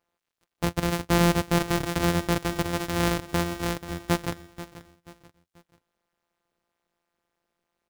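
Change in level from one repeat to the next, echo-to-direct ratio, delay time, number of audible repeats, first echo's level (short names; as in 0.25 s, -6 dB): -9.0 dB, -14.5 dB, 0.485 s, 3, -15.0 dB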